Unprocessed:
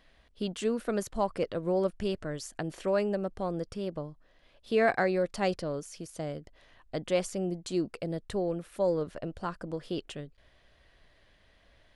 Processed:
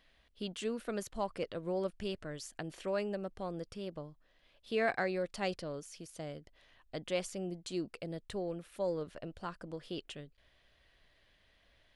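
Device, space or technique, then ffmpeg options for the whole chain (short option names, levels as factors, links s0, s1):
presence and air boost: -af "equalizer=f=3000:t=o:w=1.6:g=5,highshelf=f=9300:g=4,volume=0.422"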